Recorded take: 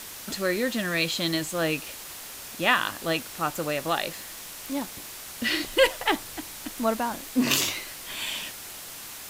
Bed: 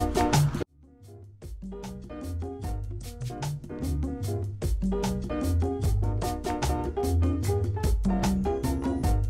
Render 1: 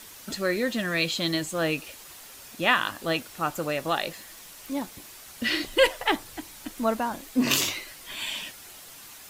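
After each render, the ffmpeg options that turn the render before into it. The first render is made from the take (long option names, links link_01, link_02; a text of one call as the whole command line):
ffmpeg -i in.wav -af "afftdn=noise_reduction=7:noise_floor=-41" out.wav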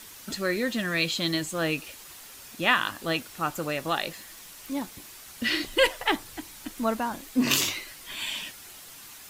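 ffmpeg -i in.wav -af "equalizer=frequency=600:width=1.5:gain=-3" out.wav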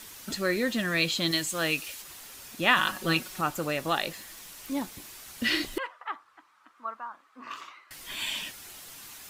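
ffmpeg -i in.wav -filter_complex "[0:a]asettb=1/sr,asplit=3[link_01][link_02][link_03];[link_01]atrim=end=1.314[link_04];[link_02]atrim=start=1.31:end=2.02,asetpts=PTS-STARTPTS,afade=type=in:duration=0.004:curve=qsin,afade=type=out:start_time=0.706:duration=0.004:curve=qsin,tiltshelf=frequency=1300:gain=-4.5[link_05];[link_03]atrim=start=2.016[link_06];[link_04][link_05]acrossfade=duration=0.004:curve1=hsin:curve2=qsin[link_07];[link_07][link_06]acrossfade=duration=0.004:curve1=qsin:curve2=hsin,asettb=1/sr,asplit=3[link_08][link_09][link_10];[link_08]atrim=end=2.764[link_11];[link_09]atrim=start=2.76:end=3.41,asetpts=PTS-STARTPTS,afade=type=in:duration=0.004:curve=qsin,afade=type=out:start_time=0.646:duration=0.004:curve=qsin,aecho=1:1:5.4:0.93,atrim=end_sample=28665[link_12];[link_10]atrim=start=3.406[link_13];[link_11][link_12]acrossfade=duration=0.004:curve1=hsin:curve2=qsin[link_14];[link_14][link_13]acrossfade=duration=0.004:curve1=qsin:curve2=hsin,asettb=1/sr,asplit=3[link_15][link_16][link_17];[link_15]atrim=end=5.784[link_18];[link_16]atrim=start=5.78:end=7.91,asetpts=PTS-STARTPTS,afade=type=in:duration=0.004:curve=qsin,afade=type=out:start_time=2.126:duration=0.004:curve=qsin,bandpass=frequency=1200:width_type=q:width=5.3[link_19];[link_17]atrim=start=7.906[link_20];[link_18][link_19]acrossfade=duration=0.004:curve1=hsin:curve2=qsin[link_21];[link_21][link_20]acrossfade=duration=0.004:curve1=qsin:curve2=hsin" out.wav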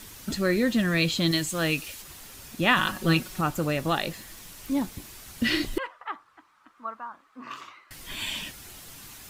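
ffmpeg -i in.wav -af "lowshelf=frequency=250:gain=12" out.wav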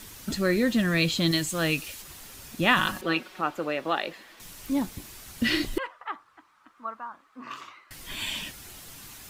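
ffmpeg -i in.wav -filter_complex "[0:a]asettb=1/sr,asplit=3[link_01][link_02][link_03];[link_01]atrim=end=3.014[link_04];[link_02]atrim=start=3.01:end=4.4,asetpts=PTS-STARTPTS,afade=type=in:duration=0.004:curve=qsin,afade=type=out:start_time=1.386:duration=0.004:curve=qsin,acrossover=split=270 4000:gain=0.0708 1 0.158[link_05][link_06][link_07];[link_05][link_06][link_07]amix=inputs=3:normalize=0[link_08];[link_03]atrim=start=4.396[link_09];[link_04][link_08]acrossfade=duration=0.004:curve1=hsin:curve2=qsin[link_10];[link_10][link_09]acrossfade=duration=0.004:curve1=qsin:curve2=hsin" out.wav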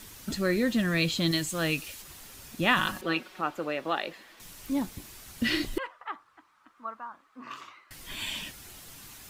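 ffmpeg -i in.wav -af "volume=-2.5dB" out.wav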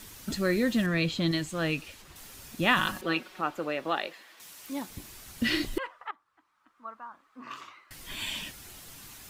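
ffmpeg -i in.wav -filter_complex "[0:a]asettb=1/sr,asplit=3[link_01][link_02][link_03];[link_01]atrim=end=0.864[link_04];[link_02]atrim=start=0.86:end=2.16,asetpts=PTS-STARTPTS,afade=type=in:duration=0.004:curve=qsin,afade=type=out:start_time=1.296:duration=0.004:curve=qsin,lowpass=frequency=2900:poles=1[link_05];[link_03]atrim=start=2.156[link_06];[link_04][link_05]acrossfade=duration=0.004:curve1=hsin:curve2=qsin[link_07];[link_07][link_06]acrossfade=duration=0.004:curve1=qsin:curve2=hsin,asettb=1/sr,asplit=3[link_08][link_09][link_10];[link_08]atrim=end=4.074[link_11];[link_09]atrim=start=4.07:end=4.9,asetpts=PTS-STARTPTS,afade=type=in:duration=0.004:curve=qsin,afade=type=out:start_time=0.826:duration=0.004:curve=qsin,highpass=frequency=570:poles=1[link_12];[link_10]atrim=start=4.896[link_13];[link_11][link_12]acrossfade=duration=0.004:curve1=hsin:curve2=qsin[link_14];[link_14][link_13]acrossfade=duration=0.004:curve1=qsin:curve2=hsin,asplit=2[link_15][link_16];[link_15]atrim=end=6.11,asetpts=PTS-STARTPTS,afade=type=out:start_time=6.106:duration=0.004:curve=hsin:silence=0.16788[link_17];[link_16]atrim=start=6.11,asetpts=PTS-STARTPTS,afade=type=in:duration=1.42:silence=0.16788[link_18];[link_17][link_18]concat=n=2:v=0:a=1" out.wav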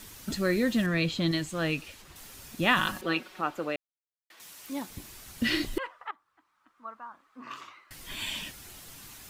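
ffmpeg -i in.wav -filter_complex "[0:a]asplit=3[link_01][link_02][link_03];[link_01]atrim=end=3.76,asetpts=PTS-STARTPTS,afade=type=out:start_time=3.756:duration=0.004:curve=hsin[link_04];[link_02]atrim=start=3.76:end=4.3,asetpts=PTS-STARTPTS,volume=0[link_05];[link_03]atrim=start=4.3,asetpts=PTS-STARTPTS,afade=type=in:duration=0.004:curve=hsin[link_06];[link_04][link_05][link_06]concat=n=3:v=0:a=1" out.wav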